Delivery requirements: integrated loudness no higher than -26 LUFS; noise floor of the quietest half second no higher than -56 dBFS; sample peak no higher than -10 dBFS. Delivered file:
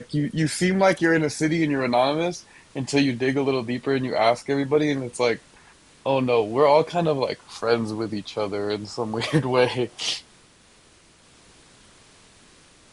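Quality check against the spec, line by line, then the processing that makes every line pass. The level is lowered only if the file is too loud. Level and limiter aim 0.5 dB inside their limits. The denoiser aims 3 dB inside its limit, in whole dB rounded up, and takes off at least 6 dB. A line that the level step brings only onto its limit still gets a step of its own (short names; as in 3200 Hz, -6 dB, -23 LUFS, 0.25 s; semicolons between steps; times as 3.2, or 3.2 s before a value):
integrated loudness -23.0 LUFS: fail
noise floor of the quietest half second -55 dBFS: fail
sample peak -5.0 dBFS: fail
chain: gain -3.5 dB; limiter -10.5 dBFS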